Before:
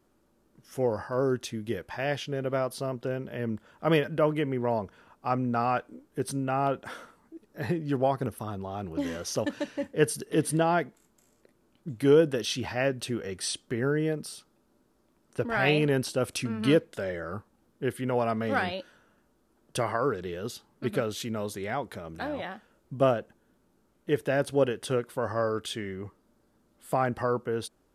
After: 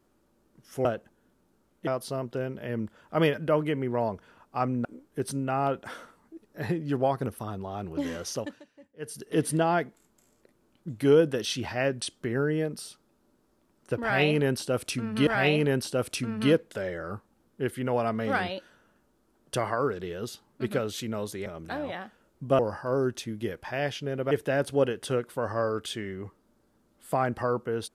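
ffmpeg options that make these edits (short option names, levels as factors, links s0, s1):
-filter_complex "[0:a]asplit=11[s0][s1][s2][s3][s4][s5][s6][s7][s8][s9][s10];[s0]atrim=end=0.852[s11];[s1]atrim=start=23.088:end=24.112[s12];[s2]atrim=start=2.568:end=5.552[s13];[s3]atrim=start=5.848:end=9.63,asetpts=PTS-STARTPTS,afade=t=out:st=3.402:d=0.38:silence=0.0891251[s14];[s4]atrim=start=9.63:end=9.99,asetpts=PTS-STARTPTS,volume=0.0891[s15];[s5]atrim=start=9.99:end=13.022,asetpts=PTS-STARTPTS,afade=t=in:d=0.38:silence=0.0891251[s16];[s6]atrim=start=13.488:end=16.742[s17];[s7]atrim=start=15.488:end=21.682[s18];[s8]atrim=start=21.958:end=23.092[s19];[s9]atrim=start=0.848:end=2.572[s20];[s10]atrim=start=24.108[s21];[s11][s12]acrossfade=d=0.004:c1=hsin:c2=hsin[s22];[s22][s13]acrossfade=d=0.004:c1=hsin:c2=hsin[s23];[s14][s15][s16]concat=n=3:v=0:a=1[s24];[s23][s24]acrossfade=d=0.004:c1=hsin:c2=hsin[s25];[s25][s17]acrossfade=d=0.004:c1=hsin:c2=hsin[s26];[s26][s18]acrossfade=d=0.004:c1=hsin:c2=hsin[s27];[s27][s19]acrossfade=d=0.004:c1=hsin:c2=hsin[s28];[s28][s20]acrossfade=d=0.004:c1=hsin:c2=hsin[s29];[s29][s21]acrossfade=d=0.004:c1=hsin:c2=hsin"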